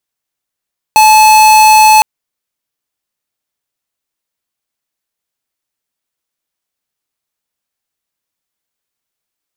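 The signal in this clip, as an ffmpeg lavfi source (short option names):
-f lavfi -i "aevalsrc='0.596*(2*lt(mod(864*t,1),0.5)-1)':d=1.06:s=44100"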